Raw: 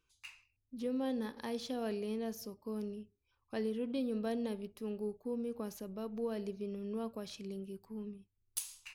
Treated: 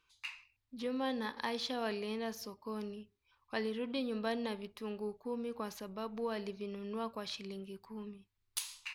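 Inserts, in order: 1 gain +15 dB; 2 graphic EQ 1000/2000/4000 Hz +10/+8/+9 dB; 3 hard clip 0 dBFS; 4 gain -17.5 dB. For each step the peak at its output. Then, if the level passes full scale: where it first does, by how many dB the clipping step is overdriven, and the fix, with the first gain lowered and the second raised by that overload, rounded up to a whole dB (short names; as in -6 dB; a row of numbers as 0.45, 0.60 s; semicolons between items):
-5.0, -1.5, -1.5, -19.0 dBFS; no overload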